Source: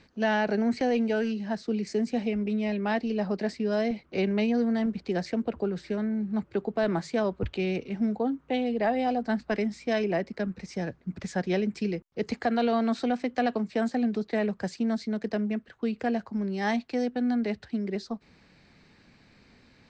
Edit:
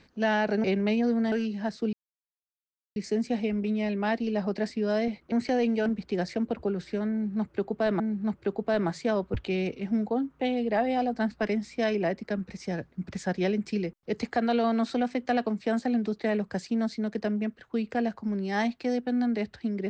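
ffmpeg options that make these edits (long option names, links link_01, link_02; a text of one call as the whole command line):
ffmpeg -i in.wav -filter_complex "[0:a]asplit=7[link_01][link_02][link_03][link_04][link_05][link_06][link_07];[link_01]atrim=end=0.642[link_08];[link_02]atrim=start=4.148:end=4.832[link_09];[link_03]atrim=start=1.178:end=1.79,asetpts=PTS-STARTPTS,afade=type=out:start_time=0.608:duration=0.004:curve=hsin,apad=pad_dur=1.03[link_10];[link_04]atrim=start=1.79:end=4.152,asetpts=PTS-STARTPTS,afade=type=in:duration=0.004:curve=hsin[link_11];[link_05]atrim=start=0.638:end=1.182[link_12];[link_06]atrim=start=4.828:end=6.972[link_13];[link_07]atrim=start=6.088[link_14];[link_08][link_09]acrossfade=duration=0.004:curve1=hsin:curve2=hsin[link_15];[link_10][link_11]concat=n=2:v=0:a=1[link_16];[link_15][link_16]acrossfade=duration=0.004:curve1=hsin:curve2=hsin[link_17];[link_17][link_12]acrossfade=duration=0.004:curve1=hsin:curve2=hsin[link_18];[link_18][link_13]acrossfade=duration=0.004:curve1=hsin:curve2=hsin[link_19];[link_19][link_14]acrossfade=duration=0.004:curve1=hsin:curve2=hsin" out.wav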